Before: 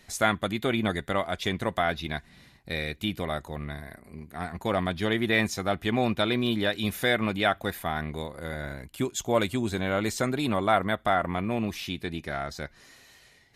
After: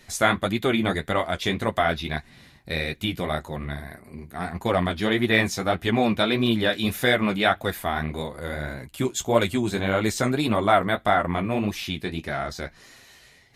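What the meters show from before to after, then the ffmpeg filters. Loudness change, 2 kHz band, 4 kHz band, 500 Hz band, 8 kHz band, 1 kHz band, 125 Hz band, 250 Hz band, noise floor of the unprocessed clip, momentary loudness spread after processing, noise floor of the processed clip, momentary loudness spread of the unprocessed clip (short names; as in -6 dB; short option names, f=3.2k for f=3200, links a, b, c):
+4.0 dB, +4.0 dB, +4.0 dB, +4.0 dB, +3.5 dB, +4.0 dB, +4.0 dB, +4.0 dB, -58 dBFS, 12 LU, -53 dBFS, 12 LU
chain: -af "flanger=delay=7.1:depth=9.7:regen=-28:speed=1.7:shape=triangular,volume=7.5dB"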